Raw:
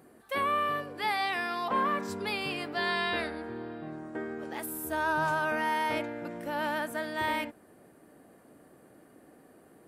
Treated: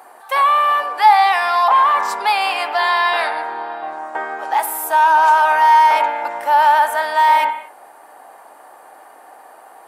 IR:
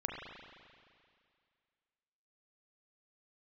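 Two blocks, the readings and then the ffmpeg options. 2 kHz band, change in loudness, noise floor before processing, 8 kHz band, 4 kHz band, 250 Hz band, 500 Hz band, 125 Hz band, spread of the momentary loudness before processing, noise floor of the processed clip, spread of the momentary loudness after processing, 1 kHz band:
+12.5 dB, +17.0 dB, -58 dBFS, +13.5 dB, +12.0 dB, n/a, +10.0 dB, under -15 dB, 10 LU, -44 dBFS, 14 LU, +20.0 dB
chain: -filter_complex "[0:a]asplit=2[a][b];[1:a]atrim=start_sample=2205,afade=t=out:st=0.29:d=0.01,atrim=end_sample=13230,asetrate=43218,aresample=44100[c];[b][c]afir=irnorm=-1:irlink=0,volume=-8.5dB[d];[a][d]amix=inputs=2:normalize=0,apsyclip=27dB,highpass=f=850:t=q:w=4.9,volume=-15.5dB"

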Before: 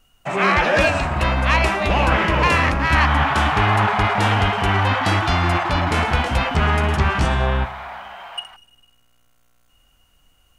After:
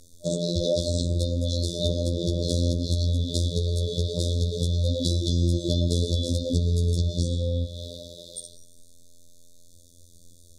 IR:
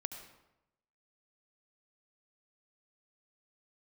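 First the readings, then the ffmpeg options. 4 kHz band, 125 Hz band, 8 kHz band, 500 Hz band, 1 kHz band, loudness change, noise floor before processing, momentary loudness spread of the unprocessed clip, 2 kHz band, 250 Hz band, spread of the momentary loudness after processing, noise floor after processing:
-5.0 dB, -3.0 dB, +1.5 dB, -5.5 dB, under -40 dB, -7.5 dB, -59 dBFS, 10 LU, under -40 dB, -4.5 dB, 8 LU, -51 dBFS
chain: -filter_complex "[0:a]asplit=2[a][b];[b]alimiter=limit=-16.5dB:level=0:latency=1,volume=-1dB[c];[a][c]amix=inputs=2:normalize=0,highshelf=f=4.3k:g=7.5,afftfilt=real='re*(1-between(b*sr/4096,610,3400))':imag='im*(1-between(b*sr/4096,610,3400))':win_size=4096:overlap=0.75,equalizer=f=3.3k:t=o:w=0.37:g=4,acompressor=threshold=-25dB:ratio=6,afftfilt=real='hypot(re,im)*cos(PI*b)':imag='0':win_size=2048:overlap=0.75,lowpass=9.4k,volume=6dB"

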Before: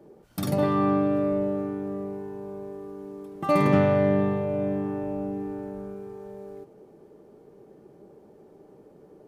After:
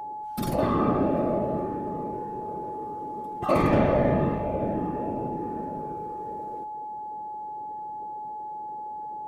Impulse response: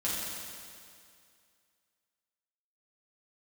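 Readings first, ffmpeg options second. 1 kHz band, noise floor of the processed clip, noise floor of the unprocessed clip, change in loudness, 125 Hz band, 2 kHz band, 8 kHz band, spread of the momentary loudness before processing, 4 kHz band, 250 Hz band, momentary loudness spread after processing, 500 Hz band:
+5.0 dB, -36 dBFS, -53 dBFS, -2.5 dB, -1.0 dB, -1.5 dB, n/a, 19 LU, -1.0 dB, -1.5 dB, 14 LU, -1.0 dB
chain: -af "afftfilt=real='hypot(re,im)*cos(2*PI*random(0))':imag='hypot(re,im)*sin(2*PI*random(1))':win_size=512:overlap=0.75,aeval=exprs='val(0)+0.0126*sin(2*PI*850*n/s)':c=same,volume=5dB"

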